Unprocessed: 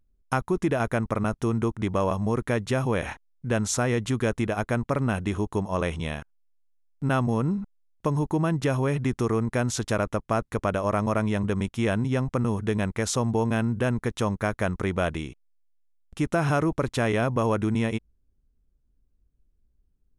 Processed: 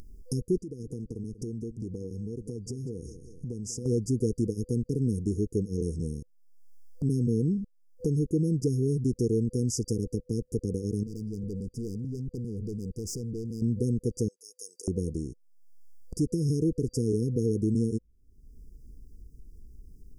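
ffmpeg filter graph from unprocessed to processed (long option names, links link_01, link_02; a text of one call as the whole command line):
ffmpeg -i in.wav -filter_complex "[0:a]asettb=1/sr,asplit=3[link_01][link_02][link_03];[link_01]atrim=end=0.594[link_04];[link_02]atrim=start=0.59:end=3.86,asetpts=PTS-STARTPTS,afade=type=in:duration=0.004:curve=qsin,afade=type=out:start_time=3.266:duration=0.004:curve=qsin,lowpass=10000,acompressor=threshold=-47dB:ratio=2:attack=3.2:release=140:knee=1:detection=peak,aecho=1:1:191|382|573:0.158|0.046|0.0133,atrim=end_sample=144207[link_05];[link_03]atrim=start=3.856[link_06];[link_04][link_05]acrossfade=duration=0.004:curve1=hsin:curve2=qsin[link_07];[link_07][link_06]acrossfade=duration=0.004:curve1=qsin:curve2=hsin,asettb=1/sr,asplit=3[link_08][link_09][link_10];[link_08]atrim=end=11.034[link_11];[link_09]atrim=start=11.03:end=13.62,asetpts=PTS-STARTPTS,afade=type=in:duration=0.004:curve=qsin,afade=type=out:start_time=2.586:duration=0.004:curve=qsin,highshelf=frequency=3900:gain=-8.5,aeval=exprs='(tanh(50.1*val(0)+0.4)-tanh(0.4))/50.1':channel_layout=same[link_12];[link_10]atrim=start=13.616[link_13];[link_11][link_12]acrossfade=duration=0.004:curve1=hsin:curve2=qsin[link_14];[link_14][link_13]acrossfade=duration=0.004:curve1=qsin:curve2=hsin,asettb=1/sr,asplit=3[link_15][link_16][link_17];[link_15]atrim=end=14.284[link_18];[link_16]atrim=start=14.28:end=14.88,asetpts=PTS-STARTPTS,afade=type=in:duration=0.004:curve=qsin,afade=type=out:start_time=0.596:duration=0.004:curve=qsin,deesser=0.65,highpass=frequency=1000:width=0.5412,highpass=frequency=1000:width=1.3066,highshelf=frequency=9500:gain=-6[link_19];[link_17]atrim=start=14.876[link_20];[link_18][link_19]acrossfade=duration=0.004:curve1=hsin:curve2=qsin[link_21];[link_21][link_20]acrossfade=duration=0.004:curve1=qsin:curve2=hsin,afftfilt=real='re*(1-between(b*sr/4096,500,4700))':imag='im*(1-between(b*sr/4096,500,4700))':win_size=4096:overlap=0.75,acompressor=mode=upward:threshold=-27dB:ratio=2.5,volume=-1dB" out.wav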